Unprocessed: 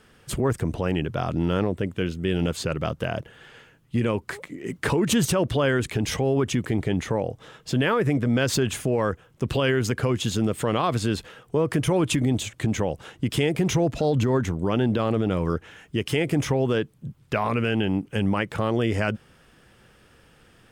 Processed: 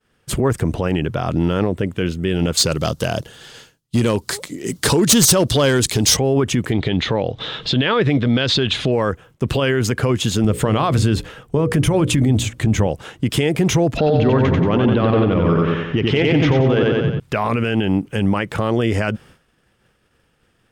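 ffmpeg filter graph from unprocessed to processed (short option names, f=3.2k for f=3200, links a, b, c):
-filter_complex "[0:a]asettb=1/sr,asplit=3[a][b][c];[a]atrim=end=2.574[d];[b]atrim=start=2.57:end=6.17,asetpts=PTS-STARTPTS,afade=t=in:d=0.004:c=qsin,afade=t=out:st=3.596:d=0.004:c=qsin,highshelf=f=3.2k:t=q:w=1.5:g=10.5,asoftclip=type=hard:threshold=-15.5dB[e];[c]atrim=start=6.166[f];[d][e]acrossfade=d=0.004:c1=hsin:c2=qsin[g];[g][f]acrossfade=d=0.004:c1=qsin:c2=hsin,asettb=1/sr,asplit=3[h][i][j];[h]atrim=end=6.724[k];[i]atrim=start=6.72:end=8.92,asetpts=PTS-STARTPTS,afade=t=in:d=0.004:c=qsin,afade=t=out:st=2.196:d=0.004:c=qsin,lowpass=f=3.8k:t=q:w=5,acompressor=mode=upward:threshold=-25dB:ratio=2.5:attack=3.2:release=140:knee=2.83:detection=peak[l];[j]atrim=start=8.916[m];[k][l]acrossfade=d=0.004:c1=hsin:c2=qsin[n];[n][m]acrossfade=d=0.004:c1=qsin:c2=hsin,asettb=1/sr,asplit=3[o][p][q];[o]atrim=end=10.444[r];[p]atrim=start=10.44:end=12.87,asetpts=PTS-STARTPTS,afade=t=in:d=0.004:c=qsin,afade=t=out:st=2.426:d=0.004:c=qsin,lowshelf=f=140:g=11.5,bandreject=f=60:t=h:w=6,bandreject=f=120:t=h:w=6,bandreject=f=180:t=h:w=6,bandreject=f=240:t=h:w=6,bandreject=f=300:t=h:w=6,bandreject=f=360:t=h:w=6,bandreject=f=420:t=h:w=6,bandreject=f=480:t=h:w=6,bandreject=f=540:t=h:w=6[s];[q]atrim=start=12.866[t];[r][s]acrossfade=d=0.004:c1=hsin:c2=qsin[u];[u][t]acrossfade=d=0.004:c1=qsin:c2=hsin,asettb=1/sr,asplit=3[v][w][x];[v]atrim=end=13.974[y];[w]atrim=start=13.97:end=17.2,asetpts=PTS-STARTPTS,afade=t=in:d=0.004:c=qsin,afade=t=out:st=3.226:d=0.004:c=qsin,lowpass=f=3.9k:w=0.5412,lowpass=f=3.9k:w=1.3066,acontrast=85,aecho=1:1:91|182|273|364|455|546|637:0.668|0.354|0.188|0.0995|0.0527|0.0279|0.0148,atrim=end_sample=142443[z];[x]atrim=start=17.196[aa];[y][z]acrossfade=d=0.004:c1=hsin:c2=qsin[ab];[ab][aa]acrossfade=d=0.004:c1=qsin:c2=hsin,agate=range=-33dB:threshold=-45dB:ratio=3:detection=peak,alimiter=level_in=14dB:limit=-1dB:release=50:level=0:latency=1,volume=-7dB"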